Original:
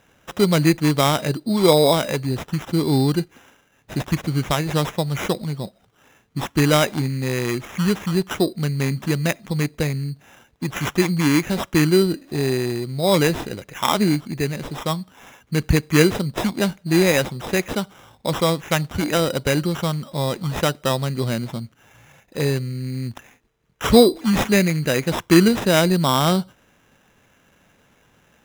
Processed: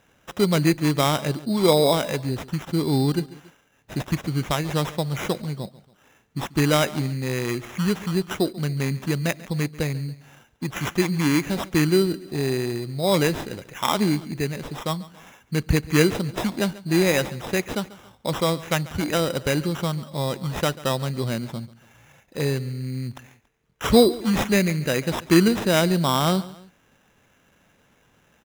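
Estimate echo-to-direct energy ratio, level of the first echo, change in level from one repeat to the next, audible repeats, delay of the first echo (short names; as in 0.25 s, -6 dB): -18.0 dB, -19.0 dB, -6.5 dB, 2, 0.14 s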